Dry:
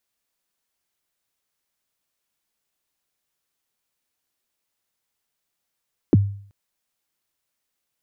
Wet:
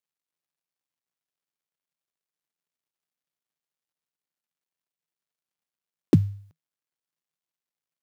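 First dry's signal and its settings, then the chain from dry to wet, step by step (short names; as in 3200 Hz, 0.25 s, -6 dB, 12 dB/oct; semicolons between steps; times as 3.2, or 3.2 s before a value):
kick drum length 0.38 s, from 410 Hz, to 100 Hz, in 27 ms, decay 0.53 s, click off, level -8 dB
switching dead time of 0.12 ms; HPF 110 Hz; bell 160 Hz +7 dB 0.23 oct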